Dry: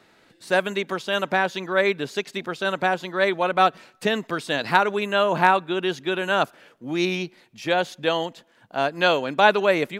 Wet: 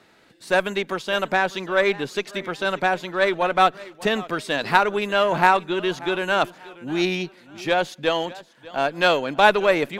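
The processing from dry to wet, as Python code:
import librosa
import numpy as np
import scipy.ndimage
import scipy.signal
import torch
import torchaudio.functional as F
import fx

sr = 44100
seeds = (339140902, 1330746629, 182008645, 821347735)

y = fx.cheby_harmonics(x, sr, harmonics=(8,), levels_db=(-30,), full_scale_db=-2.5)
y = fx.echo_warbled(y, sr, ms=590, feedback_pct=30, rate_hz=2.8, cents=122, wet_db=-19.5)
y = y * librosa.db_to_amplitude(1.0)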